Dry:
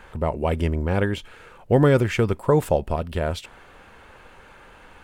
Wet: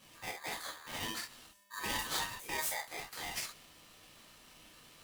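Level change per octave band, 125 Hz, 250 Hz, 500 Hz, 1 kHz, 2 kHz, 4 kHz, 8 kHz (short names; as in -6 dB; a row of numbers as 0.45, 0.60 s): -32.5, -26.5, -28.0, -13.0, -8.0, -1.5, +3.5 dB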